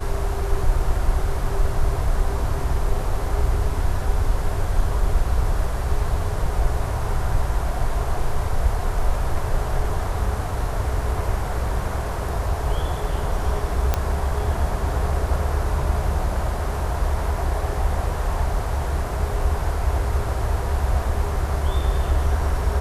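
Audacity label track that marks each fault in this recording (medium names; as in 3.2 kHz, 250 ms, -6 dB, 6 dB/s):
13.940000	13.940000	pop -6 dBFS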